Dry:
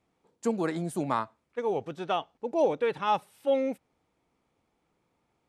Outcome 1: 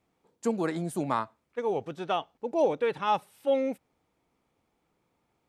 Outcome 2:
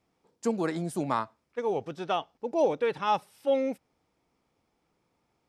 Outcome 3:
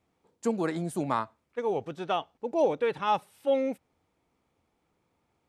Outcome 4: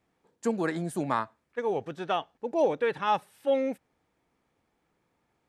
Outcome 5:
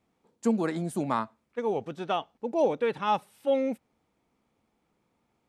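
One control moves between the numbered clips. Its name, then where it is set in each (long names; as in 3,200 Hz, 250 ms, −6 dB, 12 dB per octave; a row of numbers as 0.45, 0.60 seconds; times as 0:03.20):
parametric band, centre frequency: 15,000, 5,200, 85, 1,700, 220 Hertz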